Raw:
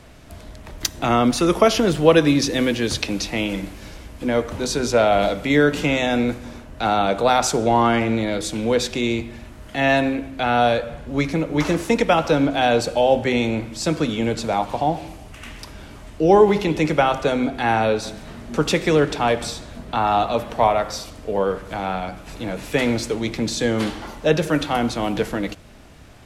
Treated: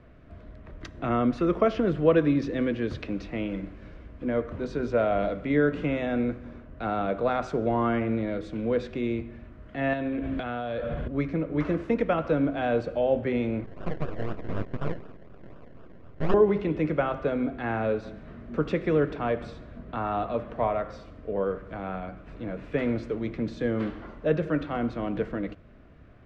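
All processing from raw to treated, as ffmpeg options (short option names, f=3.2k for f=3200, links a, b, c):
-filter_complex "[0:a]asettb=1/sr,asplit=3[a][b][c];[a]atrim=end=9.934[d];[b]atrim=start=9.93:end=11.08,asetpts=PTS-STARTPTS,afade=t=in:d=0.004:c=qsin,afade=t=out:st=1.146:d=0.004:c=qsin,equalizer=f=3.3k:t=o:w=0.31:g=8,acompressor=threshold=-30dB:ratio=16:attack=3.2:release=140:knee=1:detection=peak,aeval=exprs='0.251*sin(PI/2*2.51*val(0)/0.251)':c=same[e];[c]atrim=start=11.076[f];[d][e]acrossfade=d=0.004:c1=hsin:c2=qsin[g];[g][f]acrossfade=d=0.004:c1=qsin:c2=hsin,asettb=1/sr,asplit=3[h][i][j];[h]atrim=end=13.644[k];[i]atrim=start=13.64:end=16.34,asetpts=PTS-STARTPTS,afade=t=in:d=0.004:c=qsin,afade=t=out:st=2.696:d=0.004:c=qsin,acrusher=samples=29:mix=1:aa=0.000001:lfo=1:lforange=17.4:lforate=4,aeval=exprs='abs(val(0))':c=same[l];[j]atrim=start=16.336[m];[k][l]acrossfade=d=0.004:c1=hsin:c2=qsin[n];[n][m]acrossfade=d=0.004:c1=qsin:c2=hsin,lowpass=1.6k,equalizer=f=850:t=o:w=0.33:g=-11.5,volume=-6dB"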